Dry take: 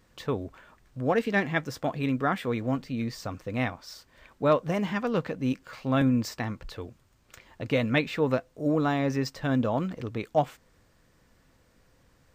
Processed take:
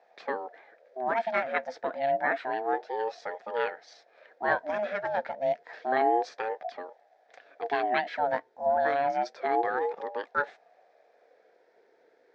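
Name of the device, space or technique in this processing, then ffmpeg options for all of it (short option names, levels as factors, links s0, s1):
voice changer toy: -af "aeval=exprs='val(0)*sin(2*PI*550*n/s+550*0.3/0.29*sin(2*PI*0.29*n/s))':c=same,highpass=440,equalizer=f=470:t=q:w=4:g=9,equalizer=f=710:t=q:w=4:g=8,equalizer=f=1100:t=q:w=4:g=-9,equalizer=f=1700:t=q:w=4:g=8,equalizer=f=2900:t=q:w=4:g=-9,equalizer=f=4400:t=q:w=4:g=-3,lowpass=f=4700:w=0.5412,lowpass=f=4700:w=1.3066"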